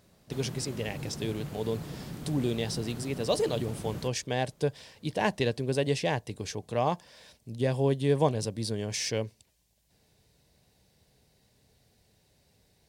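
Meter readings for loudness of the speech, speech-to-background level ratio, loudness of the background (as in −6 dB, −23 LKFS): −31.0 LKFS, 10.5 dB, −41.5 LKFS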